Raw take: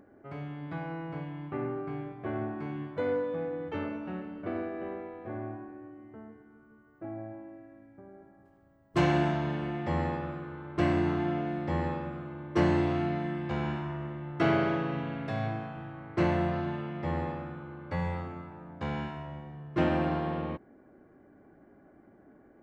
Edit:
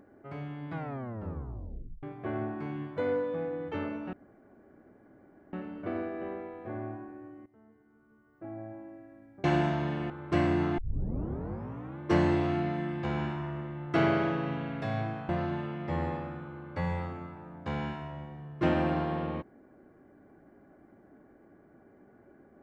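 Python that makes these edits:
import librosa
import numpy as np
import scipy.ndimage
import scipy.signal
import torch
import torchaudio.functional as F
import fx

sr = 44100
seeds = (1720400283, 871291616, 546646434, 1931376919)

y = fx.edit(x, sr, fx.tape_stop(start_s=0.73, length_s=1.3),
    fx.insert_room_tone(at_s=4.13, length_s=1.4),
    fx.fade_in_from(start_s=6.06, length_s=1.39, floor_db=-17.0),
    fx.cut(start_s=8.04, length_s=1.02),
    fx.cut(start_s=9.72, length_s=0.84),
    fx.tape_start(start_s=11.24, length_s=1.22),
    fx.cut(start_s=15.75, length_s=0.69), tone=tone)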